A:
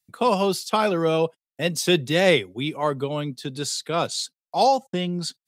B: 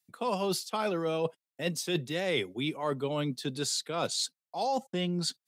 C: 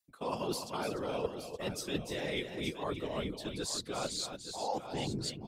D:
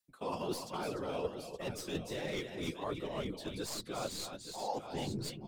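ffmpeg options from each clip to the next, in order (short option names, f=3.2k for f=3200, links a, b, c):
-af "highpass=130,areverse,acompressor=threshold=-28dB:ratio=6,areverse"
-af "afftfilt=real='hypot(re,im)*cos(2*PI*random(0))':imag='hypot(re,im)*sin(2*PI*random(1))':win_size=512:overlap=0.75,aecho=1:1:296|871:0.376|0.299"
-filter_complex "[0:a]flanger=delay=5.3:depth=6.7:regen=-40:speed=1.3:shape=sinusoidal,acrossover=split=340|1300[a][b][c];[c]aeval=exprs='clip(val(0),-1,0.00335)':c=same[d];[a][b][d]amix=inputs=3:normalize=0,volume=2dB"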